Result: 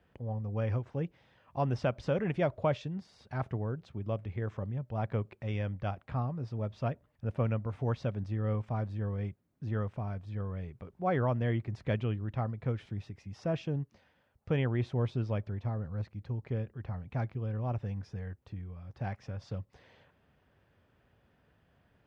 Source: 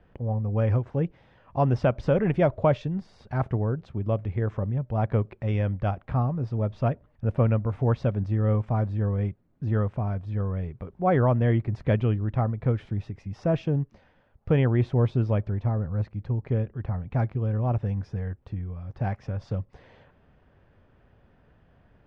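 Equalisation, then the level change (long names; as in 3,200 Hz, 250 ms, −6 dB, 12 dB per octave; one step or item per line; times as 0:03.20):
high-pass filter 60 Hz
high-shelf EQ 2,400 Hz +10 dB
−8.5 dB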